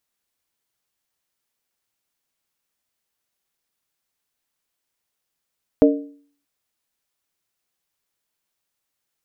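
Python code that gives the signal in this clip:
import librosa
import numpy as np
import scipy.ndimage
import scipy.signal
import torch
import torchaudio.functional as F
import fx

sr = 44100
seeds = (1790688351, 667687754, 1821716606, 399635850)

y = fx.strike_skin(sr, length_s=0.63, level_db=-8.5, hz=286.0, decay_s=0.51, tilt_db=2.5, modes=3)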